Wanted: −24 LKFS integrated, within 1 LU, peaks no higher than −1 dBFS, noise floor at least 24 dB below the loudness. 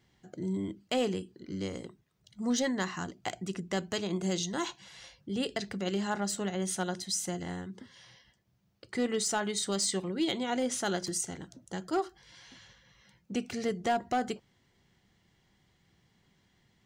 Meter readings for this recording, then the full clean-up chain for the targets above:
share of clipped samples 0.3%; peaks flattened at −22.5 dBFS; integrated loudness −33.5 LKFS; sample peak −22.5 dBFS; target loudness −24.0 LKFS
→ clipped peaks rebuilt −22.5 dBFS
level +9.5 dB

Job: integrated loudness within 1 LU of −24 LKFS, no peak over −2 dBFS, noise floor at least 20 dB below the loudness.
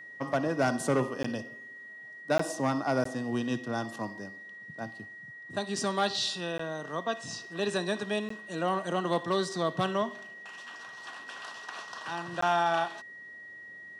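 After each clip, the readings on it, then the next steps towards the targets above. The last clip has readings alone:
number of dropouts 6; longest dropout 14 ms; interfering tone 1,900 Hz; level of the tone −44 dBFS; integrated loudness −31.5 LKFS; sample peak −17.0 dBFS; target loudness −24.0 LKFS
→ repair the gap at 0:01.23/0:02.38/0:03.04/0:06.58/0:08.29/0:12.41, 14 ms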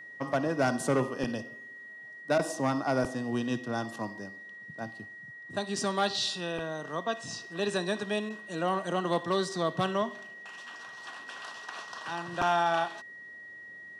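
number of dropouts 0; interfering tone 1,900 Hz; level of the tone −44 dBFS
→ notch filter 1,900 Hz, Q 30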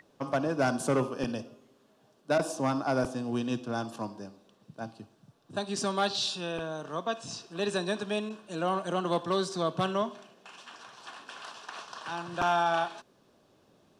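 interfering tone none found; integrated loudness −31.5 LKFS; sample peak −16.5 dBFS; target loudness −24.0 LKFS
→ level +7.5 dB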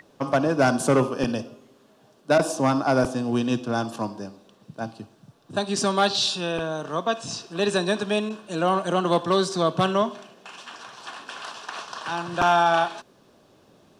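integrated loudness −24.0 LKFS; sample peak −9.0 dBFS; background noise floor −58 dBFS

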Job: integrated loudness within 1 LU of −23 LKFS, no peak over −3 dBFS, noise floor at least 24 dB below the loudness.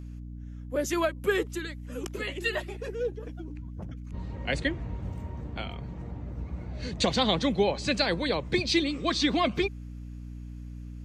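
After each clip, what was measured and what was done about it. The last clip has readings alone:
mains hum 60 Hz; hum harmonics up to 300 Hz; level of the hum −37 dBFS; integrated loudness −29.5 LKFS; sample peak −11.5 dBFS; target loudness −23.0 LKFS
→ mains-hum notches 60/120/180/240/300 Hz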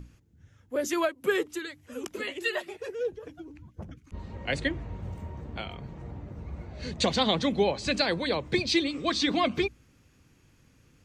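mains hum none found; integrated loudness −29.5 LKFS; sample peak −12.0 dBFS; target loudness −23.0 LKFS
→ level +6.5 dB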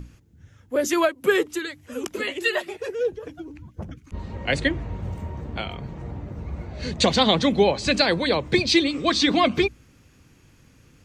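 integrated loudness −23.0 LKFS; sample peak −5.5 dBFS; background noise floor −55 dBFS

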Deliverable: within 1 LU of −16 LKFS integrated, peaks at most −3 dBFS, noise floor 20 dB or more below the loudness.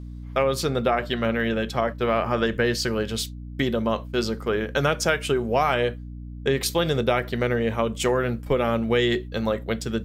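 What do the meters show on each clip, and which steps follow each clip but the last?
mains hum 60 Hz; hum harmonics up to 300 Hz; level of the hum −34 dBFS; integrated loudness −24.5 LKFS; sample peak −8.5 dBFS; target loudness −16.0 LKFS
→ mains-hum notches 60/120/180/240/300 Hz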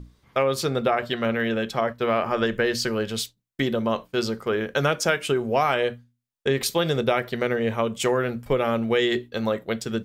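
mains hum none found; integrated loudness −24.5 LKFS; sample peak −8.5 dBFS; target loudness −16.0 LKFS
→ level +8.5 dB
brickwall limiter −3 dBFS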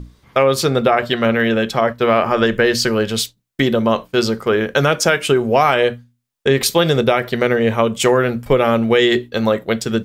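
integrated loudness −16.5 LKFS; sample peak −3.0 dBFS; background noise floor −64 dBFS

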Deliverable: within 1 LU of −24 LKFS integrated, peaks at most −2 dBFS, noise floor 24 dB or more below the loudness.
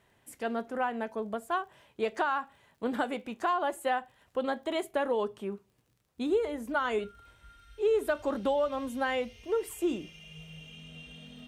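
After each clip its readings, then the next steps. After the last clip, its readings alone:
crackle rate 23 per second; integrated loudness −32.0 LKFS; sample peak −17.0 dBFS; target loudness −24.0 LKFS
→ click removal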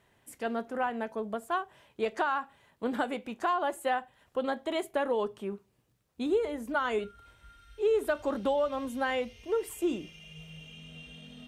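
crackle rate 0 per second; integrated loudness −32.0 LKFS; sample peak −17.0 dBFS; target loudness −24.0 LKFS
→ level +8 dB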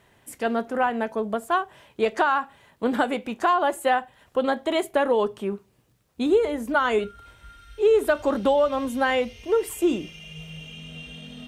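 integrated loudness −24.0 LKFS; sample peak −9.0 dBFS; background noise floor −63 dBFS

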